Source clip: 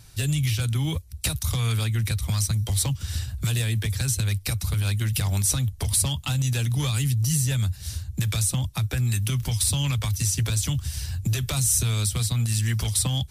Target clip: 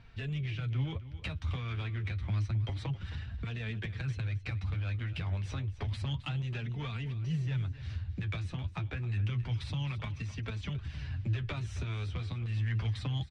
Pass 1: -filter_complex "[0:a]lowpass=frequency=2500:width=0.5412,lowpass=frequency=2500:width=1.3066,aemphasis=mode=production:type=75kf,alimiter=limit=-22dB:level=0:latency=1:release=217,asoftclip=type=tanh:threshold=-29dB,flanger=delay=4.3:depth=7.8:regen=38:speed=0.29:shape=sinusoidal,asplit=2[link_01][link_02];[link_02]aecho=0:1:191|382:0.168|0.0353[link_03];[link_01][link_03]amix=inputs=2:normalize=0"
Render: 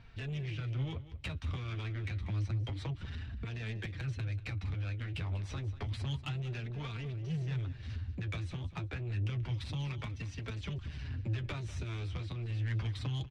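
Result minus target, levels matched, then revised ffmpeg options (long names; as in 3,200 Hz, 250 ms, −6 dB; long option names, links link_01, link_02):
echo 75 ms early; soft clipping: distortion +8 dB
-filter_complex "[0:a]lowpass=frequency=2500:width=0.5412,lowpass=frequency=2500:width=1.3066,aemphasis=mode=production:type=75kf,alimiter=limit=-22dB:level=0:latency=1:release=217,asoftclip=type=tanh:threshold=-23dB,flanger=delay=4.3:depth=7.8:regen=38:speed=0.29:shape=sinusoidal,asplit=2[link_01][link_02];[link_02]aecho=0:1:266|532:0.168|0.0353[link_03];[link_01][link_03]amix=inputs=2:normalize=0"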